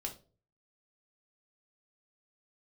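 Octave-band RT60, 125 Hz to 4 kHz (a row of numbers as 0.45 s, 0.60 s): 0.65 s, 0.45 s, 0.45 s, 0.30 s, 0.25 s, 0.25 s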